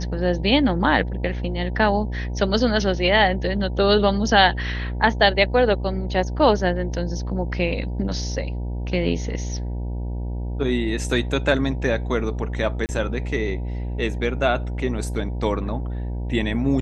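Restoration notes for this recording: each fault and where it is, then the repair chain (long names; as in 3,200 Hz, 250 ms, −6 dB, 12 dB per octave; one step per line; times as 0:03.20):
mains buzz 60 Hz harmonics 16 −27 dBFS
0:12.86–0:12.89: drop-out 29 ms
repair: hum removal 60 Hz, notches 16
repair the gap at 0:12.86, 29 ms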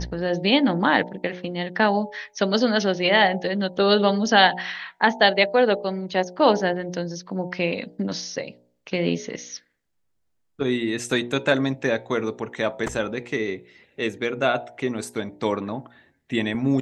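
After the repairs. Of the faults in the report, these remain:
none of them is left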